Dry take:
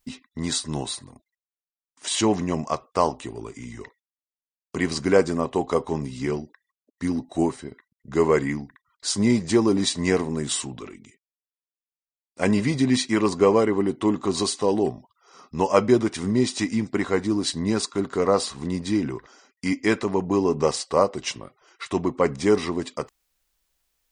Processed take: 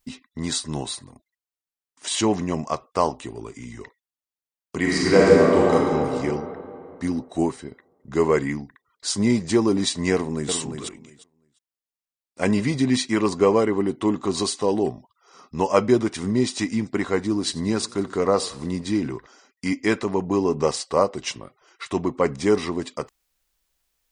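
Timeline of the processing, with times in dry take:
4.8–5.74 reverb throw, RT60 2.8 s, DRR -5.5 dB
10.13–10.53 echo throw 0.35 s, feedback 15%, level -6.5 dB
17.35–19.16 warbling echo 92 ms, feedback 48%, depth 93 cents, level -20.5 dB

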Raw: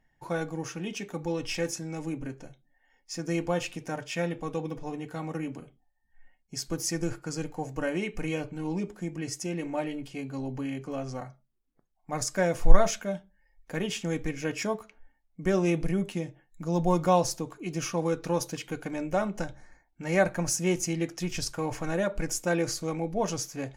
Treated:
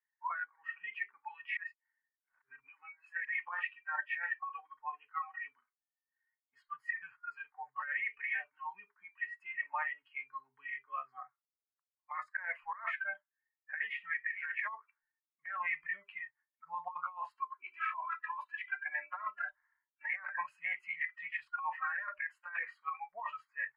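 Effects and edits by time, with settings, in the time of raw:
1.57–3.25 reverse
17.38–20.03 comb 3 ms
whole clip: elliptic band-pass 1000–2000 Hz, stop band 60 dB; spectral noise reduction 29 dB; negative-ratio compressor -47 dBFS, ratio -1; gain +9 dB

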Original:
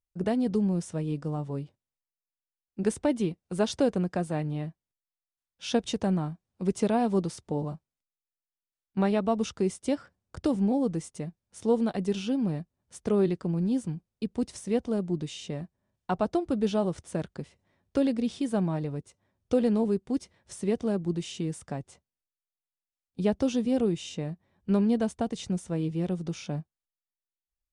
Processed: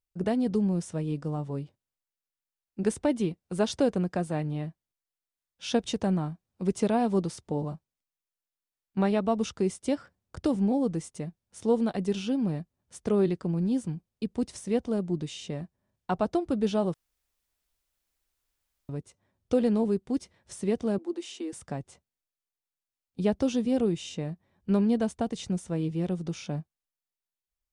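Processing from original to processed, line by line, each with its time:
16.94–18.89 room tone
20.98–21.53 rippled Chebyshev high-pass 240 Hz, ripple 3 dB

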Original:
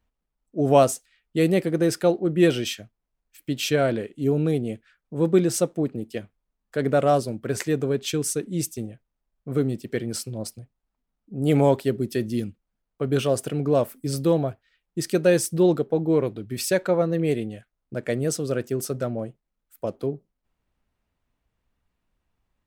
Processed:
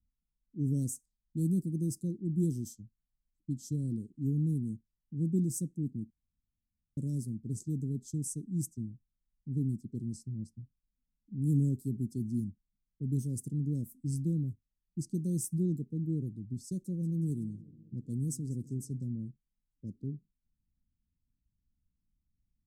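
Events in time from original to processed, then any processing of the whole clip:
6.1–6.97 room tone
16.66–18.99 warbling echo 0.185 s, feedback 64%, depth 140 cents, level -20 dB
whole clip: low-pass opened by the level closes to 1100 Hz, open at -20.5 dBFS; inverse Chebyshev band-stop 780–2400 Hz, stop band 70 dB; high shelf 5100 Hz -5.5 dB; gain -4 dB

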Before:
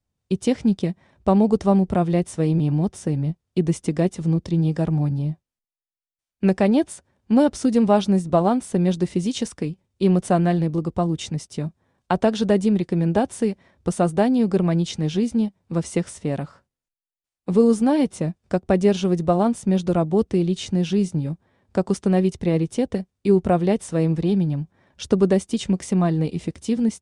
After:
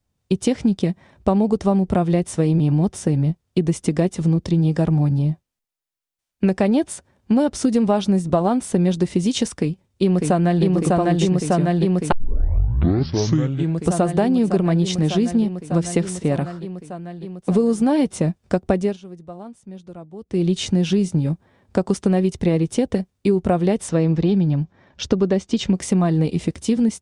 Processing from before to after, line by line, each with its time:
9.57–10.65 echo throw 0.6 s, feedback 80%, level -1 dB
12.12 tape start 1.79 s
18.71–20.51 dip -23.5 dB, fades 0.26 s
23.89–25.75 LPF 6400 Hz 24 dB/oct
whole clip: compressor, threshold -20 dBFS; gain +6 dB

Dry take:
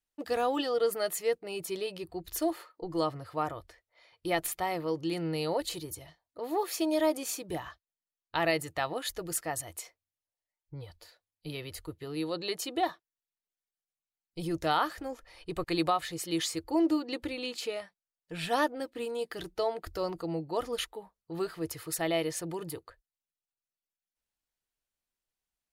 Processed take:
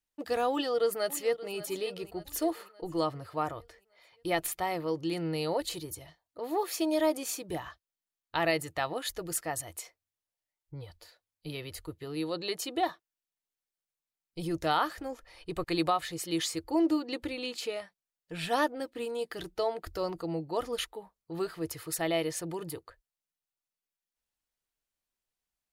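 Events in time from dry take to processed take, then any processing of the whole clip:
0.51–1.52 echo throw 0.58 s, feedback 50%, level -15.5 dB

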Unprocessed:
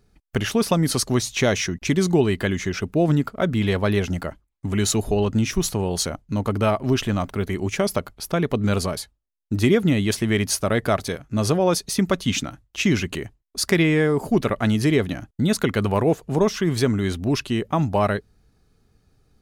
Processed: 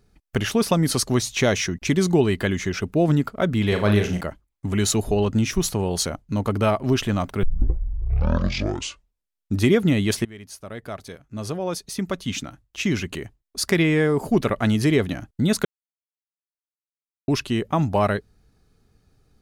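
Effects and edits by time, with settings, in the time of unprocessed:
3.68–4.21 flutter echo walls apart 6.6 m, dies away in 0.36 s
7.43 tape start 2.21 s
10.25–14.24 fade in, from -22.5 dB
15.65–17.28 mute

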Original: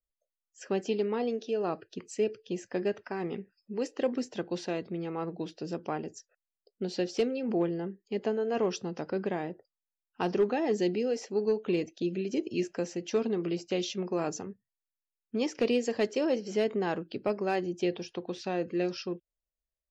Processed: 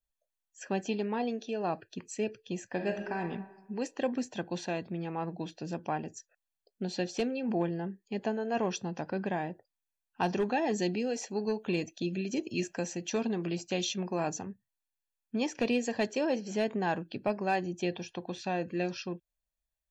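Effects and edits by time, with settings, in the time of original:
2.7–3.21 reverb throw, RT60 1.1 s, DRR 4.5 dB
10.23–14.11 high shelf 4300 Hz +5.5 dB
whole clip: notch 5100 Hz, Q 10; comb 1.2 ms, depth 48%

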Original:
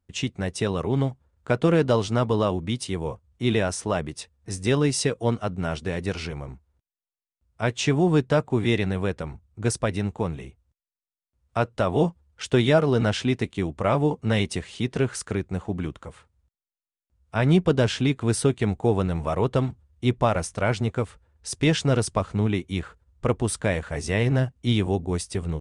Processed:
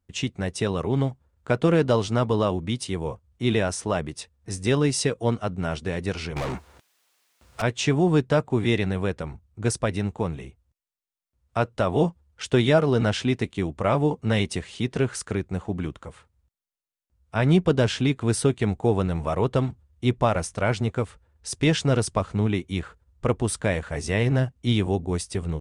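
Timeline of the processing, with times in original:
6.36–7.62 overdrive pedal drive 38 dB, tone 5900 Hz, clips at -21.5 dBFS

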